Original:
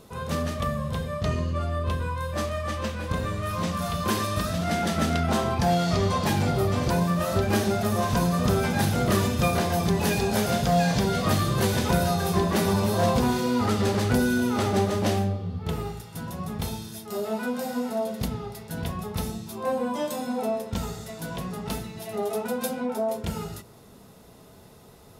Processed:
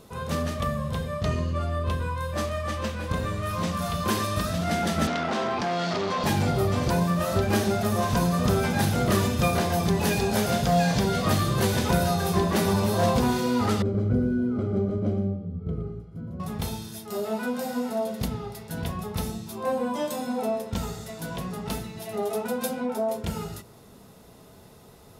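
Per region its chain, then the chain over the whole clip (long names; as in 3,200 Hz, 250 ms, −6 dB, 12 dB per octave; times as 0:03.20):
0:05.07–0:06.24: gain into a clipping stage and back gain 23.5 dB + three-way crossover with the lows and the highs turned down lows −22 dB, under 180 Hz, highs −23 dB, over 6,500 Hz + envelope flattener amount 70%
0:13.82–0:16.40: moving average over 49 samples + single-tap delay 117 ms −9.5 dB
whole clip: no processing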